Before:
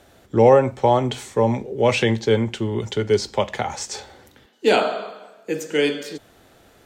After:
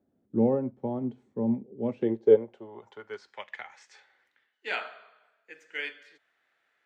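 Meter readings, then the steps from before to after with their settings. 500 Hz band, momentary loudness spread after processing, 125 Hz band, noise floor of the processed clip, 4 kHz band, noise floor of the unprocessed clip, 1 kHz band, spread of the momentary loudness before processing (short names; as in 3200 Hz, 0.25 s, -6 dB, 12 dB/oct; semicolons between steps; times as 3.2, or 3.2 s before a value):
-10.0 dB, 21 LU, -15.0 dB, -75 dBFS, -17.5 dB, -54 dBFS, -19.5 dB, 15 LU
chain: band-pass sweep 230 Hz -> 1900 Hz, 1.83–3.42; upward expander 1.5:1, over -41 dBFS; gain +2 dB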